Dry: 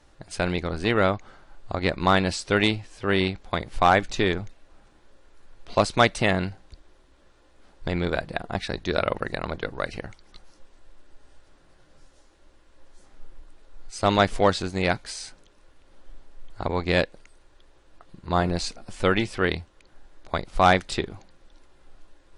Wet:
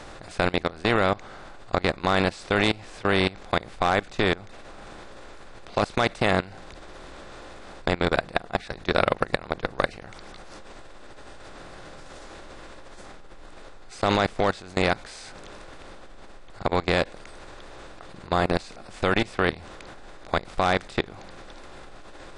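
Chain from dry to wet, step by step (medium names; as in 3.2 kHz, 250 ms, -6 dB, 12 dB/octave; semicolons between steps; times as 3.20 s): spectral levelling over time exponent 0.6; level held to a coarse grid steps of 21 dB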